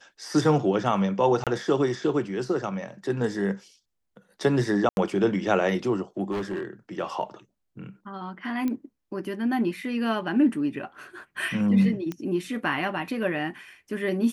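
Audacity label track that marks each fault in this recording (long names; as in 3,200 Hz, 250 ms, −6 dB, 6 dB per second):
1.440000	1.470000	drop-out 27 ms
4.890000	4.970000	drop-out 81 ms
6.310000	6.650000	clipping −26 dBFS
8.680000	8.680000	click −17 dBFS
12.120000	12.120000	click −19 dBFS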